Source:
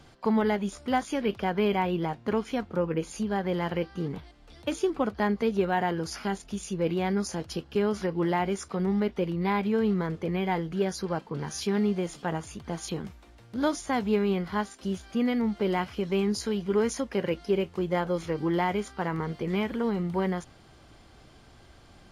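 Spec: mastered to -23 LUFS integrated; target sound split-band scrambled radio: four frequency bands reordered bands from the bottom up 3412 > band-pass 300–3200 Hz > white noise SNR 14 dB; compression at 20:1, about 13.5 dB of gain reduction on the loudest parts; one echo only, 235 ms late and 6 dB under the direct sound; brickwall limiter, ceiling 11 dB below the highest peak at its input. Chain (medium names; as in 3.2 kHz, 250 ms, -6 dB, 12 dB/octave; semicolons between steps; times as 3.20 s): compression 20:1, threshold -34 dBFS; peak limiter -33 dBFS; delay 235 ms -6 dB; four frequency bands reordered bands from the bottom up 3412; band-pass 300–3200 Hz; white noise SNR 14 dB; trim +18 dB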